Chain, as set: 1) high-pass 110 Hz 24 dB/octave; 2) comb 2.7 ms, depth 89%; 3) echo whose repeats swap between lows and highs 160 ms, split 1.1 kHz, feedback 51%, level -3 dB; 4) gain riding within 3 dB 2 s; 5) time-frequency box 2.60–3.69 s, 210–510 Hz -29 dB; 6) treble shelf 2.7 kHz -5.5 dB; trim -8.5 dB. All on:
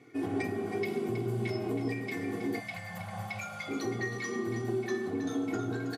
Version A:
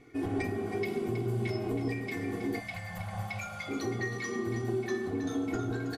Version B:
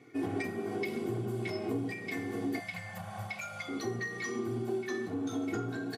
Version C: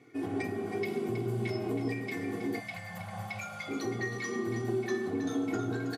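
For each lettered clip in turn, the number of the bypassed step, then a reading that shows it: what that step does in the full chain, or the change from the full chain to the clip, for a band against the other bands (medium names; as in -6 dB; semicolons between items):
1, 125 Hz band +2.5 dB; 3, 125 Hz band -1.5 dB; 4, momentary loudness spread change +1 LU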